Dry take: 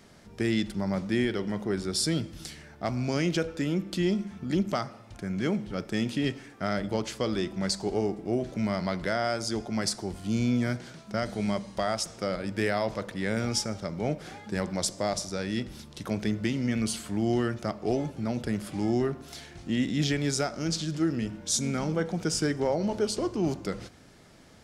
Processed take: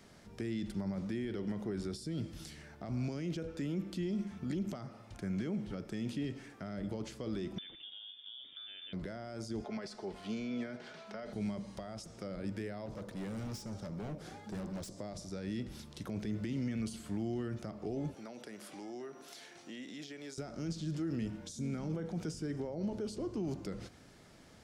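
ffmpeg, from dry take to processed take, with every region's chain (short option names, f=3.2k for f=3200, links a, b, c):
-filter_complex "[0:a]asettb=1/sr,asplit=3[a][b][c];[a]atrim=end=7.584[d];[b]atrim=start=7.58:end=8.93,asetpts=PTS-STARTPTS,afade=t=in:d=0.004:c=qsin,afade=t=out:st=1.346:d=0.004:c=qsin,lowpass=f=3.1k:t=q:w=0.5098,lowpass=f=3.1k:t=q:w=0.6013,lowpass=f=3.1k:t=q:w=0.9,lowpass=f=3.1k:t=q:w=2.563,afreqshift=-3700,equalizer=f=280:t=o:w=0.85:g=8[e];[c]atrim=start=8.926[f];[d][e]acrossfade=d=0.004:c1=hsin:c2=qsin[g];[g][f]acrossfade=d=0.004:c1=qsin:c2=hsin,asettb=1/sr,asplit=3[h][i][j];[h]atrim=end=9.644[k];[i]atrim=start=9.64:end=11.33,asetpts=PTS-STARTPTS,afade=t=in:d=0.004:c=qsin,afade=t=out:st=1.686:d=0.004:c=qsin,acrossover=split=420 4700:gain=0.126 1 0.178[l][m][n];[l][m][n]amix=inputs=3:normalize=0,aecho=1:1:4.7:0.47,atrim=end_sample=74529,acontrast=77[o];[j]atrim=start=11.326[p];[k][o]acrossfade=d=0.004:c1=hsin:c2=qsin[q];[q][p]acrossfade=d=0.004:c1=qsin:c2=hsin,asettb=1/sr,asplit=3[r][s][t];[r]atrim=end=12.864[u];[s]atrim=start=12.86:end=14.96,asetpts=PTS-STARTPTS,afade=t=in:d=0.004:c=qsin,afade=t=out:st=2.096:d=0.004:c=qsin,equalizer=f=2.3k:w=1.1:g=-5,asoftclip=type=hard:threshold=-33dB[v];[t]atrim=start=14.956[w];[u][v]acrossfade=d=0.004:c1=hsin:c2=qsin[x];[x][w]acrossfade=d=0.004:c1=qsin:c2=hsin,asettb=1/sr,asplit=3[y][z][aa];[y]atrim=end=18.144[ab];[z]atrim=start=18.14:end=20.38,asetpts=PTS-STARTPTS,afade=t=in:d=0.004:c=qsin,afade=t=out:st=2.236:d=0.004:c=qsin,highpass=380,acompressor=threshold=-41dB:ratio=2.5:attack=3.2:release=140:knee=1:detection=peak,aeval=exprs='val(0)+0.000562*sin(2*PI*5800*n/s)':c=same[ac];[aa]atrim=start=20.376[ad];[ab][ac]acrossfade=d=0.004:c1=hsin:c2=qsin[ae];[ae][ad]acrossfade=d=0.004:c1=qsin:c2=hsin,alimiter=limit=-24dB:level=0:latency=1:release=25,acrossover=split=450[af][ag];[ag]acompressor=threshold=-44dB:ratio=6[ah];[af][ah]amix=inputs=2:normalize=0,volume=-4dB"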